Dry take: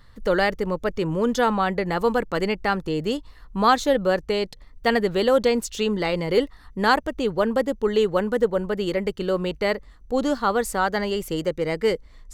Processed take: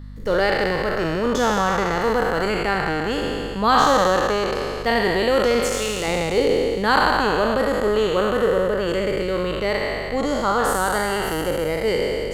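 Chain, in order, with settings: spectral sustain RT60 2.79 s; 5.60–6.08 s: peaking EQ 140 Hz -9 dB 2.2 oct; hum 50 Hz, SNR 16 dB; trim -2.5 dB

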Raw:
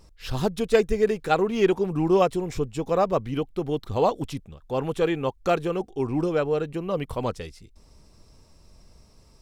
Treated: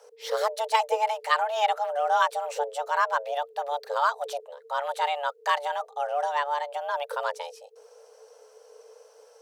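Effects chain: dynamic bell 430 Hz, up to -5 dB, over -33 dBFS, Q 1.1; frequency shift +430 Hz

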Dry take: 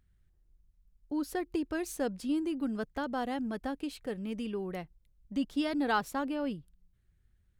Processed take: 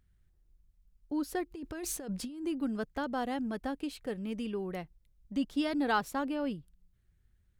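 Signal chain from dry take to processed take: 1.51–2.47 s: compressor with a negative ratio -39 dBFS, ratio -1

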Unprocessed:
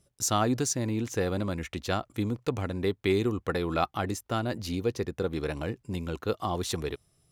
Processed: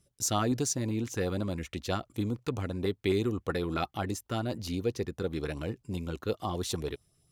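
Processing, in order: LFO notch saw up 7.7 Hz 470–2600 Hz; trim -1.5 dB

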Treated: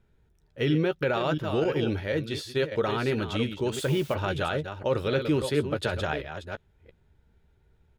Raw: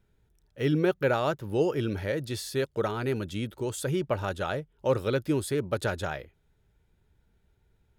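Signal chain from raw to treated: chunks repeated in reverse 345 ms, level -9.5 dB; peak limiter -20.5 dBFS, peak gain reduction 7.5 dB; 3.72–4.13 s: added noise blue -46 dBFS; dynamic bell 3.2 kHz, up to +7 dB, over -54 dBFS, Q 1.2; 1.64–2.72 s: expander -28 dBFS; treble shelf 5.6 kHz -10 dB; doubling 13 ms -11.5 dB; 5.42–6.01 s: three bands expanded up and down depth 100%; trim +3 dB

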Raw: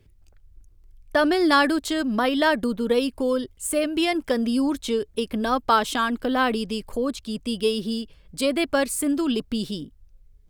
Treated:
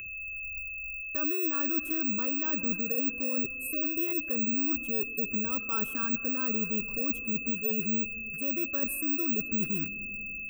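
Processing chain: rattle on loud lows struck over -41 dBFS, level -27 dBFS; high-order bell 3.7 kHz -12 dB 2.3 oct; reverse; compression, threshold -30 dBFS, peak gain reduction 14.5 dB; reverse; spectral selection erased 5.08–5.31 s, 780–6000 Hz; careless resampling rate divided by 2×, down filtered, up zero stuff; dynamic bell 1.8 kHz, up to -5 dB, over -49 dBFS, Q 1.5; whistle 2.6 kHz -35 dBFS; upward compressor, threshold -49 dBFS; static phaser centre 1.8 kHz, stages 4; on a send: reverberation RT60 3.1 s, pre-delay 45 ms, DRR 15 dB

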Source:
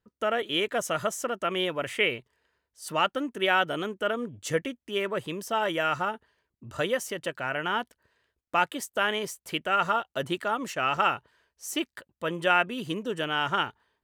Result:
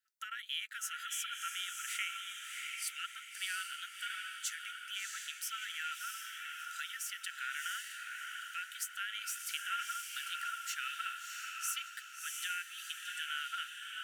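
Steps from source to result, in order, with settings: treble shelf 5 kHz +8 dB; compression, threshold -31 dBFS, peak gain reduction 13.5 dB; brick-wall FIR high-pass 1.3 kHz; echo that smears into a reverb 675 ms, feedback 44%, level -3 dB; trim -3.5 dB

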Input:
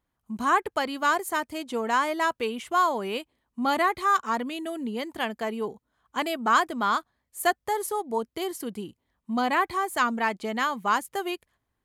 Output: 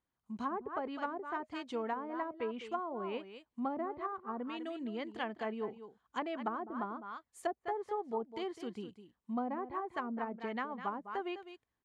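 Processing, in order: bass shelf 66 Hz -9 dB; band-stop 620 Hz, Q 20; echo from a far wall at 35 m, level -12 dB; low-pass that closes with the level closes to 550 Hz, closed at -21 dBFS; low-pass 8.2 kHz 12 dB/octave; trim -8 dB

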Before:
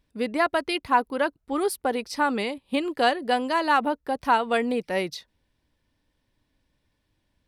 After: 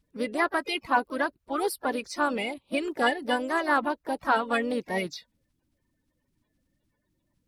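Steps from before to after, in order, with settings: coarse spectral quantiser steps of 30 dB; harmony voices +3 st -12 dB; trim -2.5 dB

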